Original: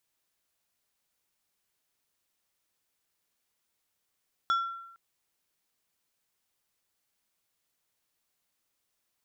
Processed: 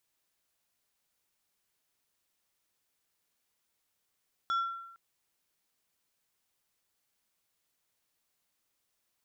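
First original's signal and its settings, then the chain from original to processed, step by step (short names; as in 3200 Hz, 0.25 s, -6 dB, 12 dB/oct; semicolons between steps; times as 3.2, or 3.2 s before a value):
glass hit plate, length 0.46 s, lowest mode 1360 Hz, decay 0.88 s, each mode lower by 10.5 dB, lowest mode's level -21.5 dB
limiter -25.5 dBFS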